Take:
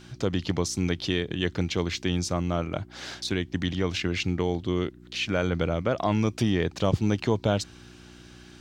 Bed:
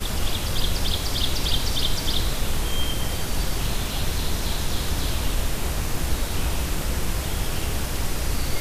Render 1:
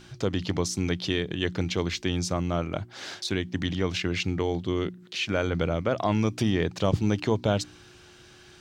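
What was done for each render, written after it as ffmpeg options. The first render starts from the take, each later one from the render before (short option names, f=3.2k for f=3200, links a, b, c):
-af "bandreject=f=60:t=h:w=4,bandreject=f=120:t=h:w=4,bandreject=f=180:t=h:w=4,bandreject=f=240:t=h:w=4,bandreject=f=300:t=h:w=4"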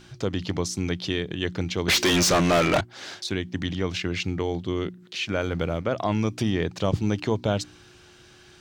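-filter_complex "[0:a]asettb=1/sr,asplit=3[a][b][c];[a]atrim=end=1.884[d];[b]atrim=start=1.88:end=2.81,asetpts=PTS-STARTPTS,afade=t=in:d=0.004:c=qsin,afade=t=out:st=0.926:d=0.004:c=qsin,asplit=2[e][f];[f]highpass=f=720:p=1,volume=33dB,asoftclip=type=tanh:threshold=-12dB[g];[e][g]amix=inputs=2:normalize=0,lowpass=f=6.8k:p=1,volume=-6dB[h];[c]atrim=start=2.806[i];[d][h]acrossfade=d=0.004:c1=hsin:c2=qsin[j];[j][i]acrossfade=d=0.004:c1=qsin:c2=hsin,asettb=1/sr,asplit=3[k][l][m];[k]atrim=end=5.414[n];[l]atrim=start=5.41:end=5.85,asetpts=PTS-STARTPTS,afade=t=in:d=0.004:c=qsin,afade=t=out:st=0.436:d=0.004:c=qsin,aeval=exprs='sgn(val(0))*max(abs(val(0))-0.00316,0)':c=same[o];[m]atrim=start=5.846[p];[n][o]acrossfade=d=0.004:c1=hsin:c2=qsin[q];[q][p]acrossfade=d=0.004:c1=qsin:c2=hsin"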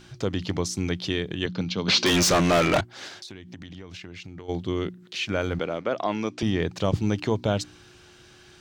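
-filter_complex "[0:a]asettb=1/sr,asplit=3[a][b][c];[a]atrim=end=1.464[d];[b]atrim=start=1.46:end=2.06,asetpts=PTS-STARTPTS,afade=t=in:d=0.004:c=qsin,afade=t=out:st=0.596:d=0.004:c=qsin,highpass=f=110:w=0.5412,highpass=f=110:w=1.3066,equalizer=f=200:t=q:w=4:g=6,equalizer=f=360:t=q:w=4:g=-7,equalizer=f=720:t=q:w=4:g=-4,equalizer=f=1.9k:t=q:w=4:g=-9,equalizer=f=4.3k:t=q:w=4:g=5,lowpass=f=5.8k:w=0.5412,lowpass=f=5.8k:w=1.3066[e];[c]atrim=start=2.056[f];[d][e]acrossfade=d=0.004:c1=hsin:c2=qsin[g];[g][f]acrossfade=d=0.004:c1=qsin:c2=hsin,asplit=3[h][i][j];[h]afade=t=out:st=3.07:d=0.02[k];[i]acompressor=threshold=-37dB:ratio=8:attack=3.2:release=140:knee=1:detection=peak,afade=t=in:st=3.07:d=0.02,afade=t=out:st=4.48:d=0.02[l];[j]afade=t=in:st=4.48:d=0.02[m];[k][l][m]amix=inputs=3:normalize=0,asettb=1/sr,asplit=3[n][o][p];[n]atrim=end=5.594[q];[o]atrim=start=5.59:end=6.43,asetpts=PTS-STARTPTS,afade=t=in:d=0.004:c=qsin,afade=t=out:st=0.836:d=0.004:c=qsin,highpass=250,lowpass=6.1k[r];[p]atrim=start=6.426[s];[q][r]acrossfade=d=0.004:c1=hsin:c2=qsin[t];[t][s]acrossfade=d=0.004:c1=qsin:c2=hsin"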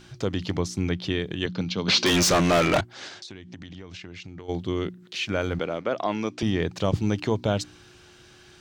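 -filter_complex "[0:a]asettb=1/sr,asplit=3[a][b][c];[a]atrim=end=0.574[d];[b]atrim=start=0.57:end=1.2,asetpts=PTS-STARTPTS,afade=t=in:d=0.004:c=qsin,afade=t=out:st=0.626:d=0.004:c=qsin,bass=f=250:g=2,treble=f=4k:g=-6[e];[c]atrim=start=1.196[f];[d][e]acrossfade=d=0.004:c1=hsin:c2=qsin[g];[g][f]acrossfade=d=0.004:c1=qsin:c2=hsin,asettb=1/sr,asplit=3[h][i][j];[h]atrim=end=2.934[k];[i]atrim=start=2.93:end=4.42,asetpts=PTS-STARTPTS,afade=t=in:d=0.004:c=qsin,afade=t=out:st=1.486:d=0.004:c=qsin,lowpass=f=8.4k:w=0.5412,lowpass=f=8.4k:w=1.3066[l];[j]atrim=start=4.416[m];[k][l]acrossfade=d=0.004:c1=hsin:c2=qsin[n];[n][m]acrossfade=d=0.004:c1=qsin:c2=hsin"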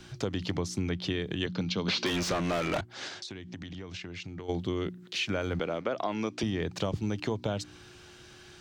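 -filter_complex "[0:a]acrossover=split=120|890|4200[a][b][c][d];[d]alimiter=level_in=1.5dB:limit=-24dB:level=0:latency=1:release=412,volume=-1.5dB[e];[a][b][c][e]amix=inputs=4:normalize=0,acompressor=threshold=-27dB:ratio=6"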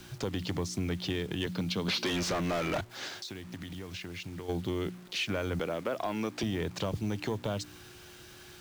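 -af "asoftclip=type=tanh:threshold=-23dB,acrusher=bits=8:mix=0:aa=0.000001"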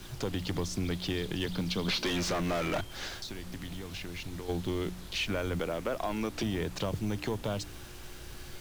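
-filter_complex "[1:a]volume=-22dB[a];[0:a][a]amix=inputs=2:normalize=0"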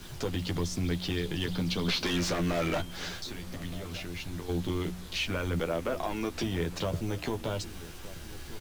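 -filter_complex "[0:a]asplit=2[a][b];[b]adelay=12,volume=-5.5dB[c];[a][c]amix=inputs=2:normalize=0,asplit=2[d][e];[e]adelay=1224,volume=-16dB,highshelf=f=4k:g=-27.6[f];[d][f]amix=inputs=2:normalize=0"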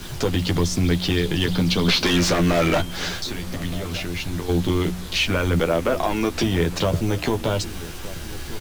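-af "volume=10.5dB"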